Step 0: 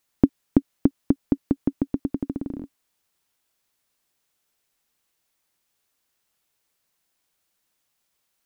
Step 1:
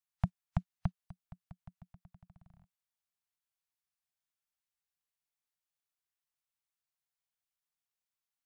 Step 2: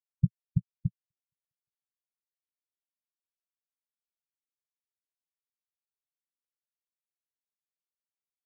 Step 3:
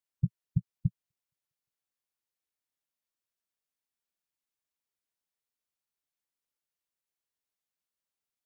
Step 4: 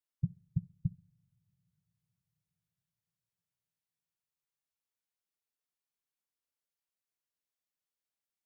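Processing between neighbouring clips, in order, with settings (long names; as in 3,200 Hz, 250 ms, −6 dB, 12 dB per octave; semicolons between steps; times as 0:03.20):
Chebyshev band-stop filter 180–680 Hz, order 4; noise reduction from a noise print of the clip's start 17 dB; in parallel at −1 dB: output level in coarse steps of 16 dB; on the sum: level −6 dB
parametric band 120 Hz +5 dB 0.24 octaves; leveller curve on the samples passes 1; every bin expanded away from the loudest bin 4 to 1; level +4.5 dB
brickwall limiter −19 dBFS, peak gain reduction 7.5 dB; level +3 dB
convolution reverb, pre-delay 3 ms, DRR 17 dB; level −4.5 dB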